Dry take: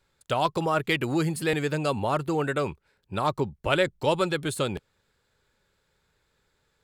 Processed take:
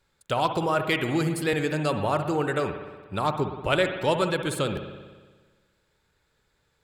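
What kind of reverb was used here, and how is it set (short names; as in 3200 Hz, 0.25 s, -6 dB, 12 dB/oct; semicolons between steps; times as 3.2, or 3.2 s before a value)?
spring tank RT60 1.4 s, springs 59 ms, chirp 70 ms, DRR 7 dB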